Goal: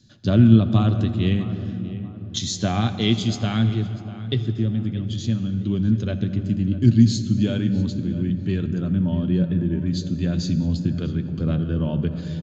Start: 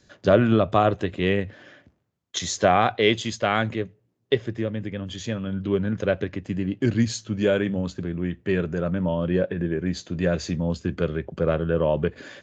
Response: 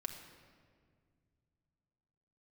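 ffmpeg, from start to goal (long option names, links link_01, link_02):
-filter_complex "[0:a]equalizer=frequency=125:width_type=o:width=1:gain=8,equalizer=frequency=250:width_type=o:width=1:gain=7,equalizer=frequency=500:width_type=o:width=1:gain=-11,equalizer=frequency=1000:width_type=o:width=1:gain=-5,equalizer=frequency=2000:width_type=o:width=1:gain=-8,equalizer=frequency=4000:width_type=o:width=1:gain=8,asplit=2[link_01][link_02];[link_02]adelay=645,lowpass=frequency=2400:poles=1,volume=-15dB,asplit=2[link_03][link_04];[link_04]adelay=645,lowpass=frequency=2400:poles=1,volume=0.39,asplit=2[link_05][link_06];[link_06]adelay=645,lowpass=frequency=2400:poles=1,volume=0.39,asplit=2[link_07][link_08];[link_08]adelay=645,lowpass=frequency=2400:poles=1,volume=0.39[link_09];[link_01][link_03][link_05][link_07][link_09]amix=inputs=5:normalize=0,asplit=2[link_10][link_11];[1:a]atrim=start_sample=2205,asetrate=23373,aresample=44100,lowshelf=frequency=440:gain=4[link_12];[link_11][link_12]afir=irnorm=-1:irlink=0,volume=-2dB[link_13];[link_10][link_13]amix=inputs=2:normalize=0,volume=-8dB"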